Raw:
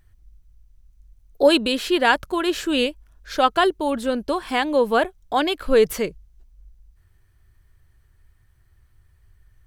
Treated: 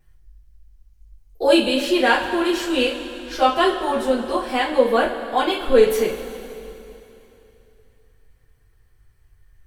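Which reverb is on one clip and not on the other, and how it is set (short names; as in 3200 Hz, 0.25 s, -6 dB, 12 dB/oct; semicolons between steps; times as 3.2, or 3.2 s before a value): two-slope reverb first 0.26 s, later 3.1 s, from -18 dB, DRR -9 dB; gain -8.5 dB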